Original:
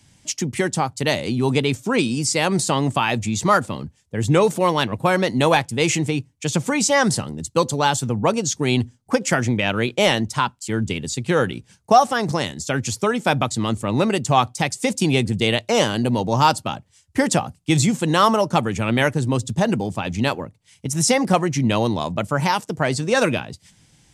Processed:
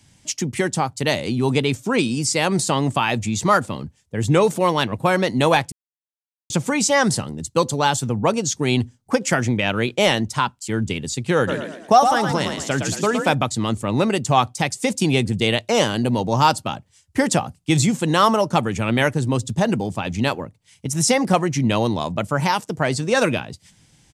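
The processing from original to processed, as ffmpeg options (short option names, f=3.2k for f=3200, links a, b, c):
-filter_complex "[0:a]asplit=3[a][b][c];[a]afade=t=out:st=11.47:d=0.02[d];[b]asplit=6[e][f][g][h][i][j];[f]adelay=113,afreqshift=44,volume=-6dB[k];[g]adelay=226,afreqshift=88,volume=-13.3dB[l];[h]adelay=339,afreqshift=132,volume=-20.7dB[m];[i]adelay=452,afreqshift=176,volume=-28dB[n];[j]adelay=565,afreqshift=220,volume=-35.3dB[o];[e][k][l][m][n][o]amix=inputs=6:normalize=0,afade=t=in:st=11.47:d=0.02,afade=t=out:st=13.33:d=0.02[p];[c]afade=t=in:st=13.33:d=0.02[q];[d][p][q]amix=inputs=3:normalize=0,asplit=3[r][s][t];[r]atrim=end=5.72,asetpts=PTS-STARTPTS,afade=t=out:st=5.716:d=0.004:c=hsin[u];[s]atrim=start=5.72:end=6.5,asetpts=PTS-STARTPTS,volume=0[v];[t]atrim=start=6.5,asetpts=PTS-STARTPTS,afade=t=in:d=0.004:c=hsin[w];[u][v][w]concat=n=3:v=0:a=1"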